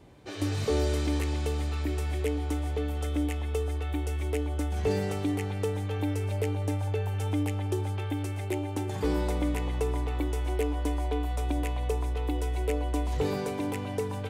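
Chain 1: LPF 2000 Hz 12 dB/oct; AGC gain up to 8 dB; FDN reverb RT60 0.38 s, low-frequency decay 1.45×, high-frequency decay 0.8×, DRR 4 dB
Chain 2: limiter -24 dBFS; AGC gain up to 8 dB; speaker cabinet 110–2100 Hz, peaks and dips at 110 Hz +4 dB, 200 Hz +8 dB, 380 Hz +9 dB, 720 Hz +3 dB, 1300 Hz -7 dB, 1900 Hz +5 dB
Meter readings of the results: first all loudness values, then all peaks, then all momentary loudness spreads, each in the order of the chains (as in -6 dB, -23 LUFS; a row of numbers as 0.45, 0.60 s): -20.5, -24.0 LUFS; -4.5, -9.5 dBFS; 6, 5 LU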